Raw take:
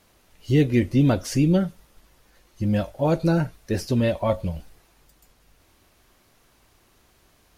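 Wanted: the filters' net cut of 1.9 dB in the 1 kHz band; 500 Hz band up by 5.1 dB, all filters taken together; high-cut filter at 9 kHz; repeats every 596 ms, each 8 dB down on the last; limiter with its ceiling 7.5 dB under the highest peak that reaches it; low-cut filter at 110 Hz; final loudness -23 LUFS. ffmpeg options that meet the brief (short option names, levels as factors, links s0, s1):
-af "highpass=110,lowpass=9000,equalizer=f=500:t=o:g=8,equalizer=f=1000:t=o:g=-7,alimiter=limit=0.211:level=0:latency=1,aecho=1:1:596|1192|1788|2384|2980:0.398|0.159|0.0637|0.0255|0.0102,volume=1.19"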